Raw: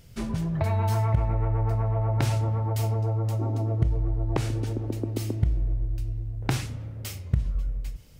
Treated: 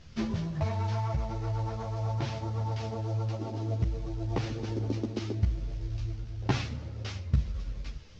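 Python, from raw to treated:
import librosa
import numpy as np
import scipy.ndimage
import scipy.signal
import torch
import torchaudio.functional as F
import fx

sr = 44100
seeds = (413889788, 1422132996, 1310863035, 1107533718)

y = fx.cvsd(x, sr, bps=32000)
y = fx.rider(y, sr, range_db=4, speed_s=0.5)
y = fx.ensemble(y, sr)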